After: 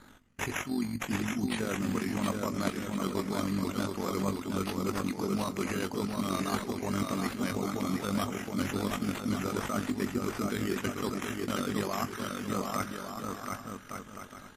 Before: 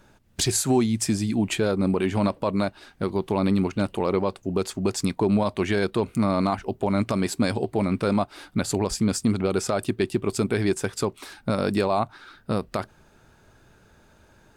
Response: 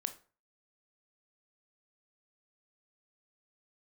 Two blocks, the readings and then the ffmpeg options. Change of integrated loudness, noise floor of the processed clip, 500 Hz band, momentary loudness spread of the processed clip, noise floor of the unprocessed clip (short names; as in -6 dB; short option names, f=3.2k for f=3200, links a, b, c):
-8.0 dB, -48 dBFS, -10.5 dB, 6 LU, -57 dBFS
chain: -filter_complex "[0:a]equalizer=f=250:t=o:w=0.33:g=11,equalizer=f=1.25k:t=o:w=0.33:g=11,equalizer=f=2k:t=o:w=0.33:g=11,equalizer=f=6.3k:t=o:w=0.33:g=10,areverse,acompressor=threshold=-27dB:ratio=12,areverse,tremolo=f=46:d=0.621,acrusher=samples=8:mix=1:aa=0.000001:lfo=1:lforange=4.8:lforate=0.38,aecho=1:1:720|1152|1411|1567|1660:0.631|0.398|0.251|0.158|0.1,asplit=2[a][b];[1:a]atrim=start_sample=2205,highshelf=f=12k:g=5,adelay=20[c];[b][c]afir=irnorm=-1:irlink=0,volume=-10.5dB[d];[a][d]amix=inputs=2:normalize=0" -ar 48000 -c:a libmp3lame -b:a 56k